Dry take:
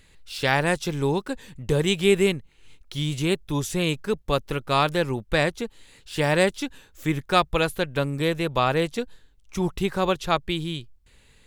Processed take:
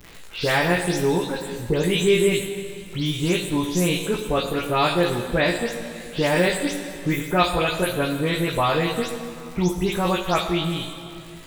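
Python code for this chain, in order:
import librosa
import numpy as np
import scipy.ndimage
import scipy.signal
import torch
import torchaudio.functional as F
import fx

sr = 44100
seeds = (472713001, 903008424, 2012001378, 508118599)

y = fx.spec_delay(x, sr, highs='late', ms=146)
y = fx.high_shelf(y, sr, hz=12000.0, db=10.5)
y = fx.dmg_crackle(y, sr, seeds[0], per_s=130.0, level_db=-39.0)
y = fx.doubler(y, sr, ms=17.0, db=-4.5)
y = fx.rev_plate(y, sr, seeds[1], rt60_s=1.7, hf_ratio=0.85, predelay_ms=0, drr_db=6.0)
y = fx.band_squash(y, sr, depth_pct=40)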